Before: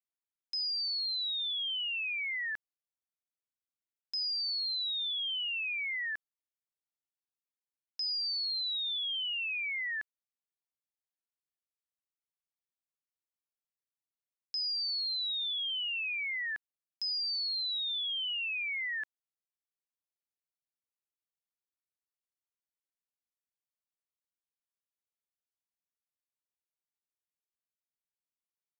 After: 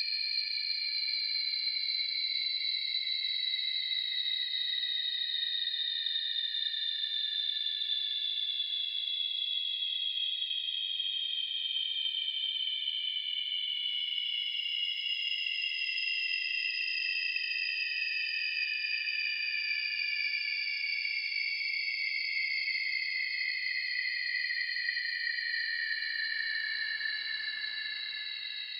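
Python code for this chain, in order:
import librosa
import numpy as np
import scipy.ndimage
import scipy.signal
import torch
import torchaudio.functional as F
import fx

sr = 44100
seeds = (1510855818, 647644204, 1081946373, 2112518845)

y = fx.quant_dither(x, sr, seeds[0], bits=12, dither='none')
y = fx.echo_alternate(y, sr, ms=688, hz=2100.0, feedback_pct=83, wet_db=-5.5)
y = fx.paulstretch(y, sr, seeds[1], factor=18.0, window_s=0.25, from_s=17.52)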